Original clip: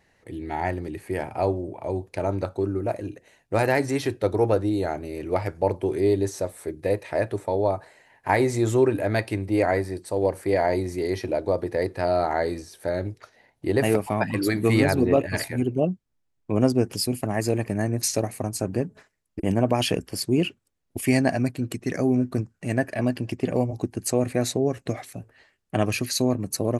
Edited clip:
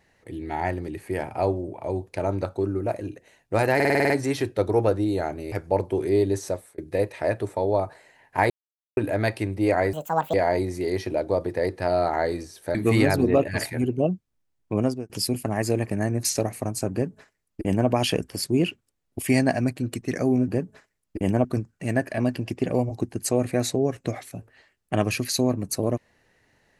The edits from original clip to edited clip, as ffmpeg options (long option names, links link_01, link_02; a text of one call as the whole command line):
ffmpeg -i in.wav -filter_complex "[0:a]asplit=18[link_01][link_02][link_03][link_04][link_05][link_06][link_07][link_08][link_09][link_10][link_11][link_12][link_13][link_14][link_15][link_16][link_17][link_18];[link_01]atrim=end=3.802[link_19];[link_02]atrim=start=3.748:end=3.802[link_20];[link_03]atrim=start=3.748:end=3.802[link_21];[link_04]atrim=start=3.748:end=3.802[link_22];[link_05]atrim=start=3.748:end=3.802[link_23];[link_06]atrim=start=3.748:end=3.802[link_24];[link_07]atrim=start=3.748:end=3.802[link_25];[link_08]atrim=start=3.748:end=5.172[link_26];[link_09]atrim=start=5.428:end=6.69,asetpts=PTS-STARTPTS,afade=type=out:start_time=1.002:duration=0.26[link_27];[link_10]atrim=start=6.69:end=8.41,asetpts=PTS-STARTPTS,afade=type=in:duration=0.004:curve=hsin,afade=type=out:start_time=1.716:duration=0.004:curve=hsin[link_28];[link_11]atrim=start=8.41:end=8.88,asetpts=PTS-STARTPTS,volume=0[link_29];[link_12]atrim=start=8.88:end=9.844,asetpts=PTS-STARTPTS,afade=type=in:duration=0.004:curve=hsin[link_30];[link_13]atrim=start=9.84:end=10.51,asetpts=PTS-STARTPTS,asetrate=72765,aresample=44100,atrim=end_sample=17907,asetpts=PTS-STARTPTS[link_31];[link_14]atrim=start=10.506:end=12.922[link_32];[link_15]atrim=start=14.528:end=16.88,asetpts=PTS-STARTPTS,afade=type=out:start_time=1.992:duration=0.36[link_33];[link_16]atrim=start=16.88:end=22.262,asetpts=PTS-STARTPTS,afade=type=in:duration=0.004:curve=hsin[link_34];[link_17]atrim=start=18.698:end=19.672[link_35];[link_18]atrim=start=22.258[link_36];[link_19][link_20]acrossfade=duration=0.004:curve1=hsin:curve2=hsin[link_37];[link_37][link_21]acrossfade=duration=0.004:curve1=hsin:curve2=hsin[link_38];[link_38][link_22]acrossfade=duration=0.004:curve1=hsin:curve2=hsin[link_39];[link_39][link_23]acrossfade=duration=0.004:curve1=hsin:curve2=hsin[link_40];[link_40][link_24]acrossfade=duration=0.004:curve1=hsin:curve2=hsin[link_41];[link_41][link_25]acrossfade=duration=0.004:curve1=hsin:curve2=hsin[link_42];[link_42][link_26]acrossfade=duration=0.004:curve1=hsin:curve2=hsin[link_43];[link_27][link_28][link_29][link_30]concat=n=4:v=0:a=1[link_44];[link_43][link_44]acrossfade=duration=0.004:curve1=hsin:curve2=hsin[link_45];[link_45][link_31]acrossfade=duration=0.004:curve1=hsin:curve2=hsin[link_46];[link_46][link_32]acrossfade=duration=0.004:curve1=hsin:curve2=hsin[link_47];[link_33][link_34]concat=n=2:v=0:a=1[link_48];[link_47][link_48]acrossfade=duration=0.004:curve1=hsin:curve2=hsin[link_49];[link_49][link_35]acrossfade=duration=0.004:curve1=hsin:curve2=hsin[link_50];[link_50][link_36]acrossfade=duration=0.004:curve1=hsin:curve2=hsin" out.wav